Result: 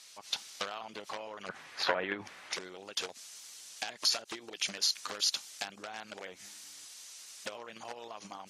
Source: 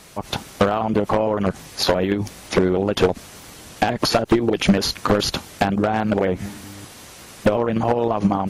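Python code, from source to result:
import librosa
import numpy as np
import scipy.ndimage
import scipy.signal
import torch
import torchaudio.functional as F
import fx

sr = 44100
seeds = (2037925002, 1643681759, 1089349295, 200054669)

y = fx.bandpass_q(x, sr, hz=fx.steps((0.0, 5100.0), (1.49, 1700.0), (2.53, 6200.0)), q=1.2)
y = F.gain(torch.from_numpy(y), -3.0).numpy()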